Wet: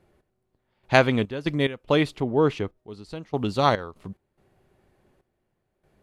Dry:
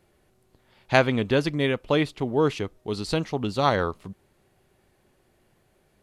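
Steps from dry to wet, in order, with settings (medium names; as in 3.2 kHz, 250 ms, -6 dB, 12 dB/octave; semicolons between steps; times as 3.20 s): 2.20–2.76 s: treble shelf 3.6 kHz -> 5.1 kHz -11.5 dB; trance gate "x...xx.x.xxx" 72 bpm -12 dB; tape noise reduction on one side only decoder only; trim +1.5 dB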